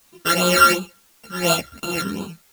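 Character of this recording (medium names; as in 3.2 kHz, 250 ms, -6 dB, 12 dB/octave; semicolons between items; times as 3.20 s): a buzz of ramps at a fixed pitch in blocks of 32 samples; phasing stages 12, 2.8 Hz, lowest notch 740–1900 Hz; a quantiser's noise floor 10-bit, dither triangular; a shimmering, thickened sound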